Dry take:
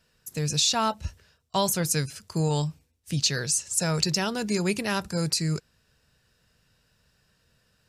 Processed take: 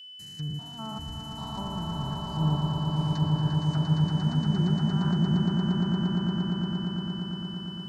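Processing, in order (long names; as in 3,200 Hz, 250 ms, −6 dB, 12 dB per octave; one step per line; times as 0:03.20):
spectrum averaged block by block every 200 ms
treble cut that deepens with the level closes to 650 Hz, closed at −27.5 dBFS
high-shelf EQ 9,000 Hz −9 dB
in parallel at −0.5 dB: downward compressor, threshold −47 dBFS, peak gain reduction 22.5 dB
on the sum: phaser with its sweep stopped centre 1,200 Hz, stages 4
on a send: echo that builds up and dies away 116 ms, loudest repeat 8, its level −5.5 dB
on the sum: steady tone 3,000 Hz −40 dBFS
multiband upward and downward expander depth 40%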